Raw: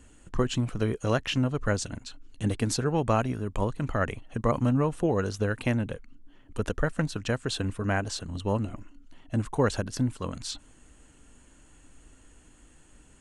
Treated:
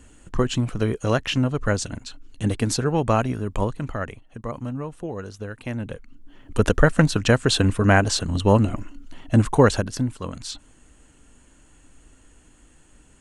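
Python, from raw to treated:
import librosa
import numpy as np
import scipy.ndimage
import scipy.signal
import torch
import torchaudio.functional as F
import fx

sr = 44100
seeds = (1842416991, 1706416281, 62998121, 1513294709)

y = fx.gain(x, sr, db=fx.line((3.62, 4.5), (4.28, -6.0), (5.62, -6.0), (5.88, 1.0), (6.62, 11.0), (9.51, 11.0), (10.07, 2.0)))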